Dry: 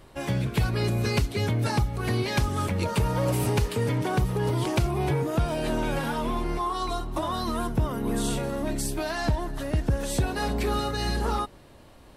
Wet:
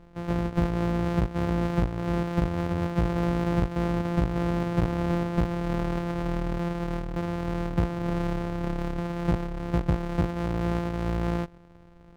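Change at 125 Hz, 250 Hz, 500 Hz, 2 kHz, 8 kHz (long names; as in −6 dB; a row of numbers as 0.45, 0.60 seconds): −1.0 dB, +2.5 dB, −1.5 dB, −4.5 dB, below −15 dB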